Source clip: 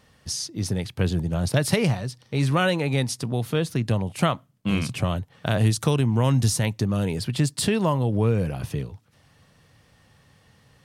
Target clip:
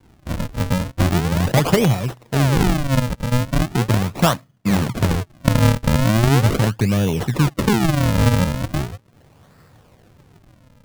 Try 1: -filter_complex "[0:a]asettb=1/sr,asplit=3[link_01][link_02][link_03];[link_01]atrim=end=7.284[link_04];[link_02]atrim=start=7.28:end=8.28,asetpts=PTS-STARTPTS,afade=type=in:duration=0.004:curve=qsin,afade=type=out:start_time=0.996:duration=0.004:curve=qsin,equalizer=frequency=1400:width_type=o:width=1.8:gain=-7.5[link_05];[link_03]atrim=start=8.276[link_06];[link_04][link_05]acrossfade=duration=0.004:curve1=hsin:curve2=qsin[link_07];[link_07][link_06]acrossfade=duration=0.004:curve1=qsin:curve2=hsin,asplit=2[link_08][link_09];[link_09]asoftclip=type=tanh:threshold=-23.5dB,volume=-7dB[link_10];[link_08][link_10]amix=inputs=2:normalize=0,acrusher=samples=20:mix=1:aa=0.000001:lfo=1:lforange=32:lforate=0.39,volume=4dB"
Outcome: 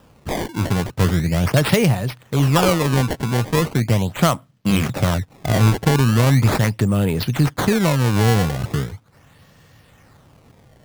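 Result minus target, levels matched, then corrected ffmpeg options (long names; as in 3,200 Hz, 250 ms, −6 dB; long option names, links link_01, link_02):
sample-and-hold swept by an LFO: distortion −9 dB
-filter_complex "[0:a]asettb=1/sr,asplit=3[link_01][link_02][link_03];[link_01]atrim=end=7.284[link_04];[link_02]atrim=start=7.28:end=8.28,asetpts=PTS-STARTPTS,afade=type=in:duration=0.004:curve=qsin,afade=type=out:start_time=0.996:duration=0.004:curve=qsin,equalizer=frequency=1400:width_type=o:width=1.8:gain=-7.5[link_05];[link_03]atrim=start=8.276[link_06];[link_04][link_05]acrossfade=duration=0.004:curve1=hsin:curve2=qsin[link_07];[link_07][link_06]acrossfade=duration=0.004:curve1=qsin:curve2=hsin,asplit=2[link_08][link_09];[link_09]asoftclip=type=tanh:threshold=-23.5dB,volume=-7dB[link_10];[link_08][link_10]amix=inputs=2:normalize=0,acrusher=samples=68:mix=1:aa=0.000001:lfo=1:lforange=109:lforate=0.39,volume=4dB"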